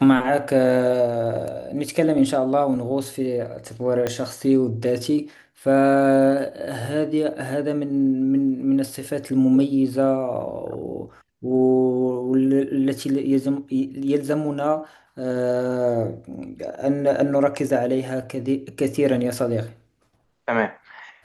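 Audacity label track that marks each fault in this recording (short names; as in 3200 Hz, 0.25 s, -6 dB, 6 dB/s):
4.070000	4.070000	pop -10 dBFS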